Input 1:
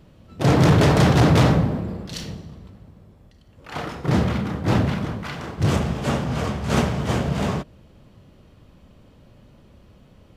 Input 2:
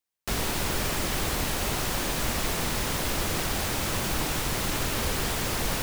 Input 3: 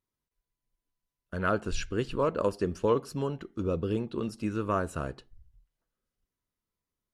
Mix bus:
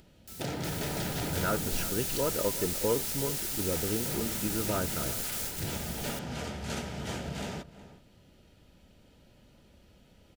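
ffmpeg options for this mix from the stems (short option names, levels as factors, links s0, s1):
-filter_complex "[0:a]equalizer=f=120:t=o:w=0.77:g=-4.5,volume=0.376,asplit=2[s0][s1];[s1]volume=0.112[s2];[1:a]highshelf=f=4700:g=11.5,volume=0.211,asplit=2[s3][s4];[s4]volume=0.668[s5];[2:a]volume=0.708,asplit=3[s6][s7][s8];[s7]volume=0.188[s9];[s8]apad=whole_len=256774[s10];[s3][s10]sidechaingate=range=0.141:threshold=0.00126:ratio=16:detection=peak[s11];[s0][s11]amix=inputs=2:normalize=0,highshelf=f=2500:g=9,acompressor=threshold=0.0224:ratio=5,volume=1[s12];[s2][s5][s9]amix=inputs=3:normalize=0,aecho=0:1:367:1[s13];[s6][s12][s13]amix=inputs=3:normalize=0,acompressor=mode=upward:threshold=0.00158:ratio=2.5,asuperstop=centerf=1100:order=20:qfactor=6.2"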